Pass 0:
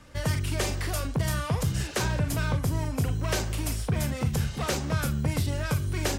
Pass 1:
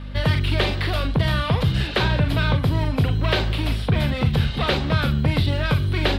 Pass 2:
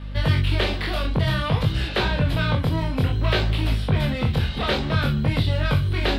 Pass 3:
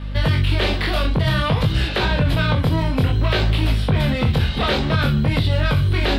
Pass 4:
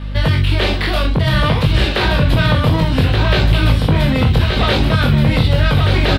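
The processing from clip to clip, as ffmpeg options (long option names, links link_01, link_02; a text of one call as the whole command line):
ffmpeg -i in.wav -filter_complex "[0:a]aeval=exprs='val(0)+0.0112*(sin(2*PI*50*n/s)+sin(2*PI*2*50*n/s)/2+sin(2*PI*3*50*n/s)/3+sin(2*PI*4*50*n/s)/4+sin(2*PI*5*50*n/s)/5)':channel_layout=same,acrossover=split=4600[link_01][link_02];[link_02]acompressor=threshold=-39dB:ratio=4:attack=1:release=60[link_03];[link_01][link_03]amix=inputs=2:normalize=0,highshelf=frequency=5000:width_type=q:width=3:gain=-10,volume=7dB" out.wav
ffmpeg -i in.wav -af "flanger=delay=18.5:depth=6.5:speed=0.56,volume=1.5dB" out.wav
ffmpeg -i in.wav -af "alimiter=level_in=13dB:limit=-1dB:release=50:level=0:latency=1,volume=-8dB" out.wav
ffmpeg -i in.wav -af "aecho=1:1:1176:0.596,volume=3.5dB" out.wav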